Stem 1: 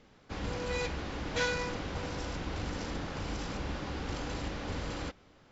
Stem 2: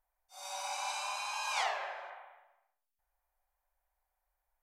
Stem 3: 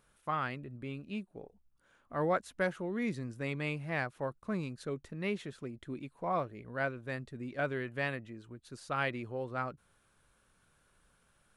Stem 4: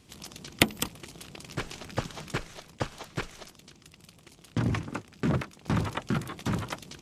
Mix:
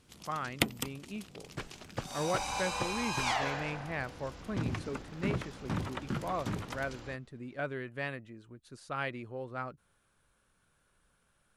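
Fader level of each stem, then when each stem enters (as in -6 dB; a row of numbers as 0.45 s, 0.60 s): -11.5 dB, +1.5 dB, -2.5 dB, -7.0 dB; 2.05 s, 1.70 s, 0.00 s, 0.00 s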